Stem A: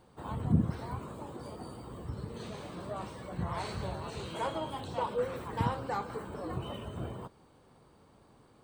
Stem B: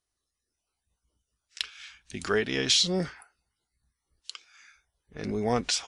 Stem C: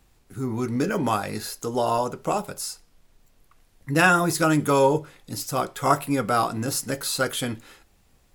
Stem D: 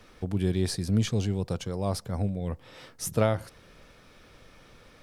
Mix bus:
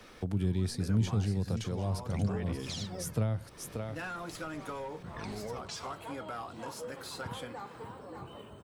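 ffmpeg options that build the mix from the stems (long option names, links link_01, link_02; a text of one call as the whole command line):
ffmpeg -i stem1.wav -i stem2.wav -i stem3.wav -i stem4.wav -filter_complex "[0:a]adelay=1650,volume=-7.5dB,asplit=2[link_01][link_02];[link_02]volume=-8dB[link_03];[1:a]alimiter=limit=-22dB:level=0:latency=1:release=492,aphaser=in_gain=1:out_gain=1:delay=3.9:decay=0.76:speed=0.41:type=sinusoidal,volume=-5.5dB[link_04];[2:a]asplit=2[link_05][link_06];[link_06]highpass=frequency=720:poles=1,volume=17dB,asoftclip=type=tanh:threshold=-4.5dB[link_07];[link_05][link_07]amix=inputs=2:normalize=0,lowpass=frequency=2300:poles=1,volume=-6dB,volume=-18.5dB[link_08];[3:a]volume=2.5dB,asplit=2[link_09][link_10];[link_10]volume=-11dB[link_11];[link_03][link_11]amix=inputs=2:normalize=0,aecho=0:1:582:1[link_12];[link_01][link_04][link_08][link_09][link_12]amix=inputs=5:normalize=0,lowshelf=frequency=93:gain=-8.5,acrossover=split=180[link_13][link_14];[link_14]acompressor=threshold=-38dB:ratio=5[link_15];[link_13][link_15]amix=inputs=2:normalize=0" out.wav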